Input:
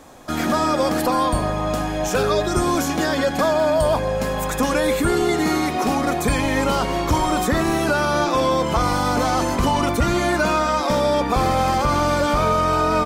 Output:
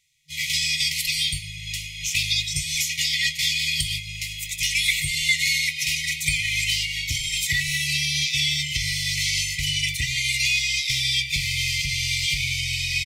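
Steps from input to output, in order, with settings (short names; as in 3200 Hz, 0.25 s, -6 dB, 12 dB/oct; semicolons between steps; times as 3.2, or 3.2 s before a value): expander -12 dBFS; FFT band-reject 160–1900 Hz; compressor 2:1, threshold -38 dBFS, peak gain reduction 10 dB; overdrive pedal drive 21 dB, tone 5600 Hz, clips at -1 dBFS; doubler 21 ms -13 dB; echo 0.106 s -21 dB; gain +5.5 dB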